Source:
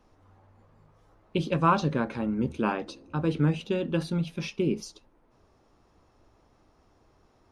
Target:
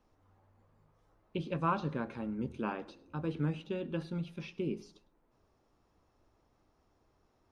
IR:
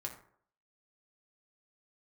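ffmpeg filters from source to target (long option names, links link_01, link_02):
-filter_complex "[0:a]acrossover=split=4000[link_01][link_02];[link_02]acompressor=threshold=-57dB:ratio=4:attack=1:release=60[link_03];[link_01][link_03]amix=inputs=2:normalize=0,asplit=2[link_04][link_05];[1:a]atrim=start_sample=2205,adelay=103[link_06];[link_05][link_06]afir=irnorm=-1:irlink=0,volume=-19.5dB[link_07];[link_04][link_07]amix=inputs=2:normalize=0,volume=-9dB"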